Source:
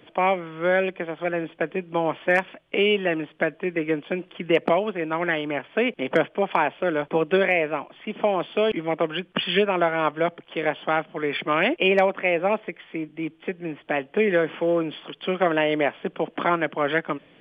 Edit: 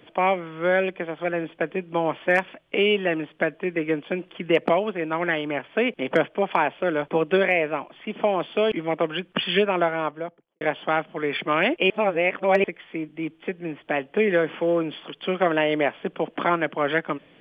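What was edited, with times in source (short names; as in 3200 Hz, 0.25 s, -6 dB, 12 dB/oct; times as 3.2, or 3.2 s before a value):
9.73–10.61 studio fade out
11.9–12.64 reverse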